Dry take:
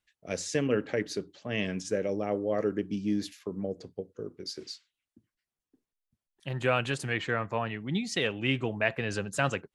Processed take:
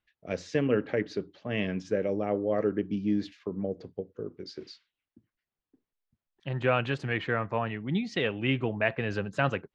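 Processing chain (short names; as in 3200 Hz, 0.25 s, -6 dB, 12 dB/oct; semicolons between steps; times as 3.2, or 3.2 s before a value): air absorption 220 m; gain +2 dB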